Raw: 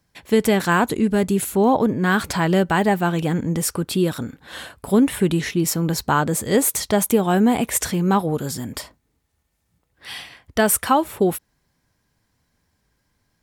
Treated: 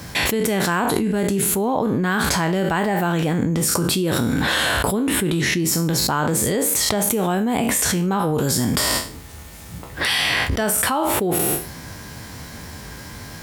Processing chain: spectral sustain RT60 0.39 s; high-pass 48 Hz; level flattener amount 100%; trim -8 dB

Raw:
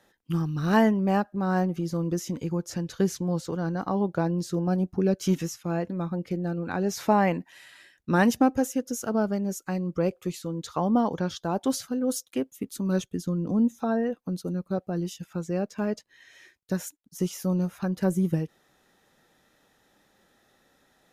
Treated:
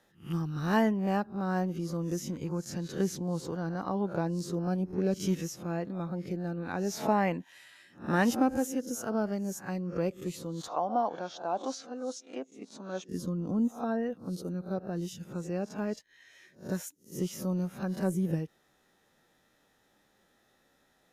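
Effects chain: reverse spectral sustain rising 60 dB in 0.31 s; 10.68–13.09 s: cabinet simulation 380–6000 Hz, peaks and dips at 410 Hz -4 dB, 710 Hz +7 dB, 1.9 kHz -5 dB, 3.1 kHz -5 dB, 4.8 kHz -4 dB; trim -5.5 dB

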